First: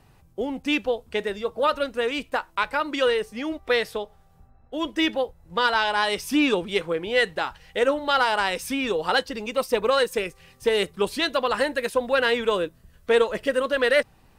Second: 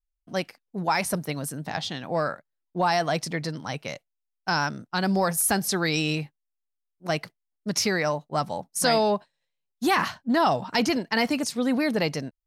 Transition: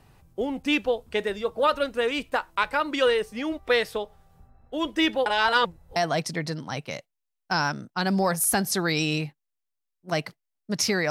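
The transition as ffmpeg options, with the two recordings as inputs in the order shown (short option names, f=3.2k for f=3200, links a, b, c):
-filter_complex "[0:a]apad=whole_dur=11.1,atrim=end=11.1,asplit=2[a][b];[a]atrim=end=5.262[c];[b]atrim=start=5.258:end=5.962,asetpts=PTS-STARTPTS,areverse[d];[1:a]atrim=start=2.928:end=8.07[e];[c][d]acrossfade=d=0.004:c1=hsin:c2=hsin[f];[f][e]acrossfade=d=0.004:c1=hsin:c2=hsin"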